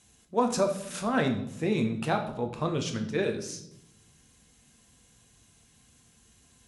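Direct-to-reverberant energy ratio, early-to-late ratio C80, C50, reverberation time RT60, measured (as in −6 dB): 4.0 dB, 13.0 dB, 9.0 dB, 0.80 s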